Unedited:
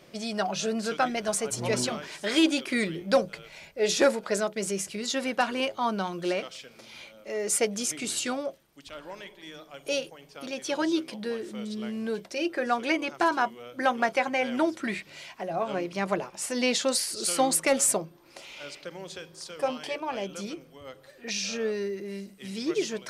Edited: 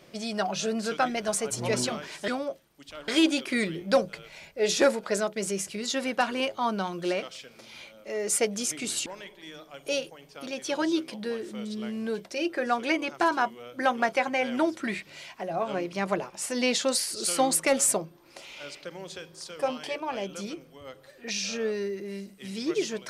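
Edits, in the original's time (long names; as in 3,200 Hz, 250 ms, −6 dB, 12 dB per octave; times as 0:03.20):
0:08.26–0:09.06: move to 0:02.28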